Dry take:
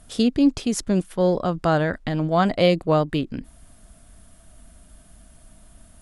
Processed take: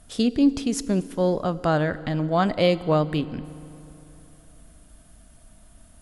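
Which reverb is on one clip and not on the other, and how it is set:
feedback delay network reverb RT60 3.2 s, high-frequency decay 0.65×, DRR 15.5 dB
level −2 dB

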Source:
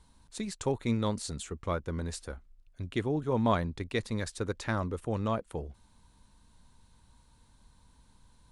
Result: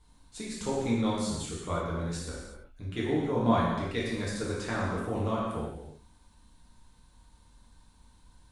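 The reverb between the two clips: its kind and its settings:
reverb whose tail is shaped and stops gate 400 ms falling, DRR −7 dB
level −5.5 dB

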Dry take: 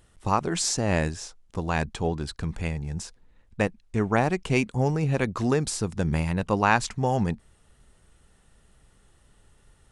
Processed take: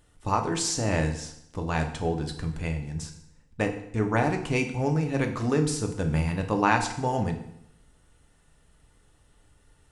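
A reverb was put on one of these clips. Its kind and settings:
feedback delay network reverb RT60 0.75 s, low-frequency decay 1.1×, high-frequency decay 0.9×, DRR 3.5 dB
level −3 dB

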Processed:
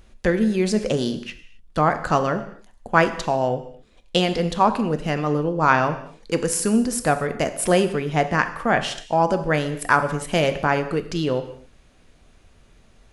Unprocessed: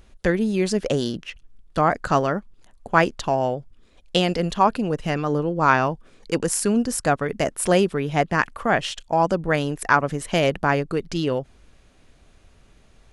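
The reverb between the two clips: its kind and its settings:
reverb whose tail is shaped and stops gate 290 ms falling, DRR 8.5 dB

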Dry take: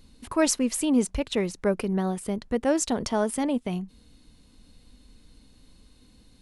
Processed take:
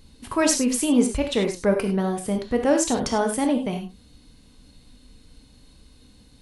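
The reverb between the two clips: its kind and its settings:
reverb whose tail is shaped and stops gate 120 ms flat, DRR 3.5 dB
level +2.5 dB

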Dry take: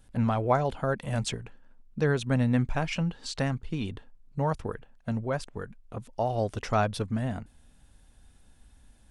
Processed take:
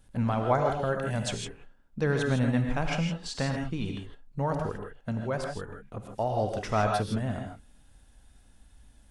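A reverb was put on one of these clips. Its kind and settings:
reverb whose tail is shaped and stops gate 180 ms rising, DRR 2.5 dB
level −1.5 dB

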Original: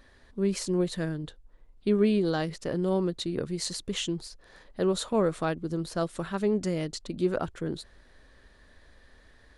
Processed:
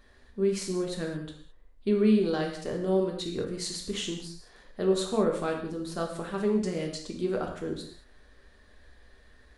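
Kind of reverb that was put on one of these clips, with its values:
reverb whose tail is shaped and stops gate 240 ms falling, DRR 0.5 dB
level −3.5 dB

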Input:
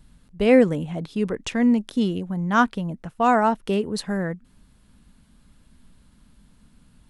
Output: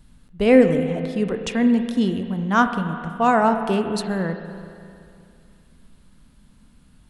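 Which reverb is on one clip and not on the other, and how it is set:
spring reverb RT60 2.5 s, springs 31/42 ms, chirp 35 ms, DRR 7.5 dB
level +1 dB

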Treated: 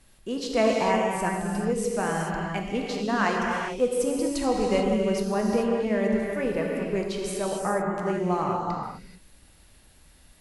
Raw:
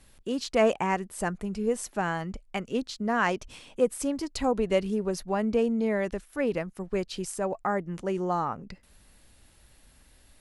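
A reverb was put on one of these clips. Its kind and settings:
reverb whose tail is shaped and stops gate 460 ms flat, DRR −1.5 dB
level −1 dB

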